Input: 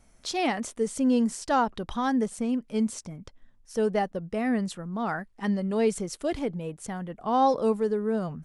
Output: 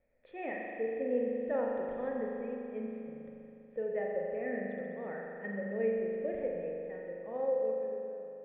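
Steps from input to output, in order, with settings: fade out at the end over 1.80 s; cascade formant filter e; spring tank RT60 2.9 s, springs 40 ms, chirp 50 ms, DRR -1.5 dB

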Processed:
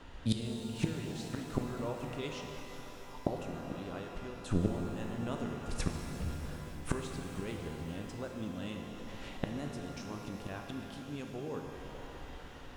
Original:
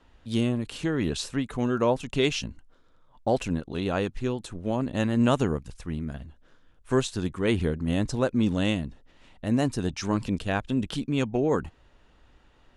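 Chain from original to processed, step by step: inverted gate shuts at -24 dBFS, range -25 dB; pitch-shifted reverb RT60 3.9 s, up +12 st, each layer -8 dB, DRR 2 dB; trim +7.5 dB

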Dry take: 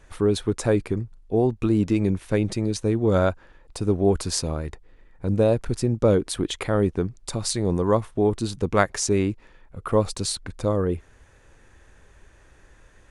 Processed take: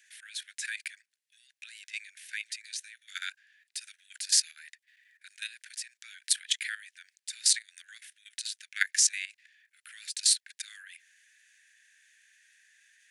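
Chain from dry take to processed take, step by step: steep high-pass 1.6 kHz 96 dB/octave; treble shelf 10 kHz +3.5 dB; level held to a coarse grid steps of 14 dB; trim +6.5 dB

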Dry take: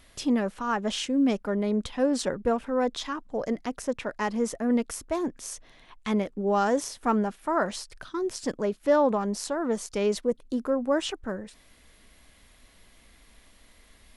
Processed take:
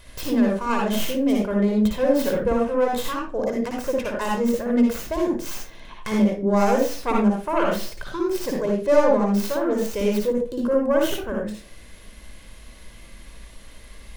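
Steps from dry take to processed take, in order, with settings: tracing distortion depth 0.37 ms; in parallel at +2 dB: compression, threshold -41 dBFS, peak gain reduction 21.5 dB; on the sum: reverberation RT60 0.35 s, pre-delay 55 ms, DRR -0.5 dB; trim -2 dB

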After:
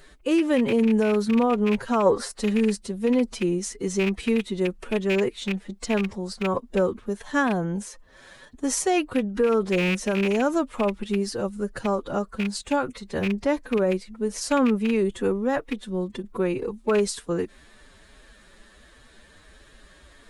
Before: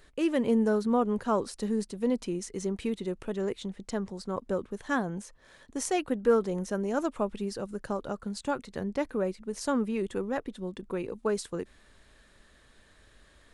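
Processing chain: rattle on loud lows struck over -34 dBFS, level -23 dBFS; time stretch by phase-locked vocoder 1.5×; peak limiter -21.5 dBFS, peak gain reduction 9 dB; time-frequency box 2.06–2.37 s, 390–2200 Hz +8 dB; trim +8 dB

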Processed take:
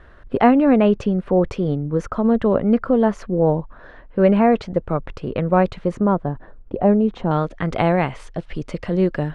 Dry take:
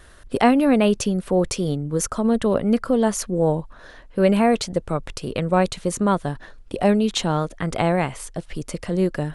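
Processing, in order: low-pass 1.9 kHz 12 dB/octave, from 5.99 s 1 kHz, from 7.31 s 3.2 kHz; trim +2.5 dB

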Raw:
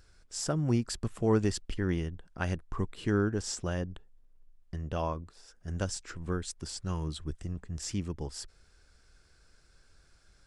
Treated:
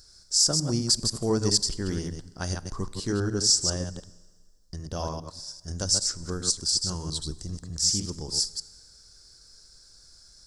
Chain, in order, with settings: chunks repeated in reverse 100 ms, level -5 dB; resonant high shelf 3.6 kHz +11 dB, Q 3; Schroeder reverb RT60 1.6 s, combs from 31 ms, DRR 19.5 dB

